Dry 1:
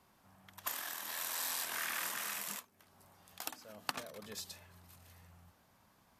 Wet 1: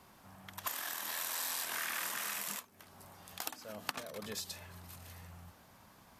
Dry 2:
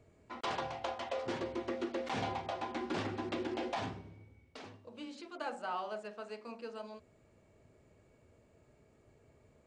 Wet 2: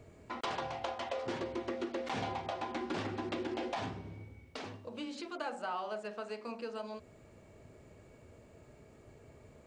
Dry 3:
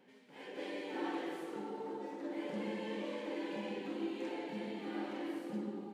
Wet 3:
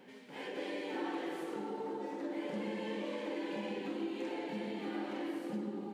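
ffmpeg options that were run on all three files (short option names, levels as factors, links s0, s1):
-af "acompressor=threshold=0.00355:ratio=2,volume=2.51"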